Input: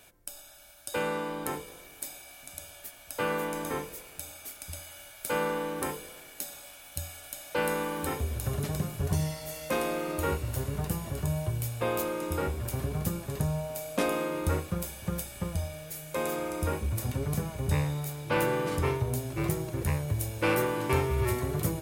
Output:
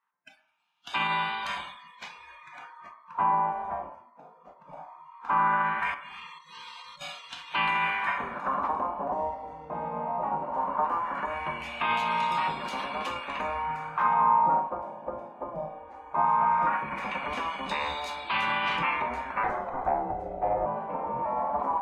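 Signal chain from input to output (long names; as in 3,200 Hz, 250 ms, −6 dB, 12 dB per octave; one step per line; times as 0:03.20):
gate on every frequency bin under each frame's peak −10 dB weak
high-pass filter 58 Hz
wave folding −23 dBFS
graphic EQ with 15 bands 100 Hz −12 dB, 400 Hz −9 dB, 1,000 Hz +12 dB, 2,500 Hz +4 dB, 6,300 Hz +3 dB
brickwall limiter −25 dBFS, peak gain reduction 9.5 dB
0:05.94–0:07.01: compressor whose output falls as the input rises −49 dBFS, ratio −1
noise reduction from a noise print of the clip's start 26 dB
0:19.43–0:20.66: frequency shifter −260 Hz
auto-filter low-pass sine 0.18 Hz 590–3,800 Hz
on a send: convolution reverb RT60 0.60 s, pre-delay 3 ms, DRR 6.5 dB
on the sum: level +4 dB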